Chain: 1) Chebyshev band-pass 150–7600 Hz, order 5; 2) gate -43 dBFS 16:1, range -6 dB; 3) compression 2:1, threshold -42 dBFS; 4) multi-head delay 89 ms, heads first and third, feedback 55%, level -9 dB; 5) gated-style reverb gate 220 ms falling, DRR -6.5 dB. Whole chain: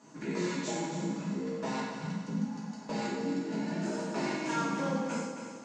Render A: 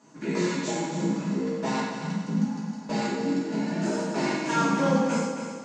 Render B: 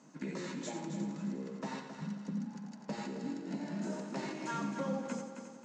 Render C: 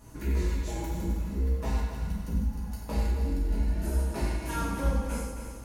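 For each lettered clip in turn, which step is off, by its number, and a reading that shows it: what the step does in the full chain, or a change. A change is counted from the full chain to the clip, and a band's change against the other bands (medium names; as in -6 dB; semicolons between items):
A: 3, mean gain reduction 5.5 dB; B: 5, echo-to-direct 8.0 dB to -4.5 dB; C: 1, 125 Hz band +12.0 dB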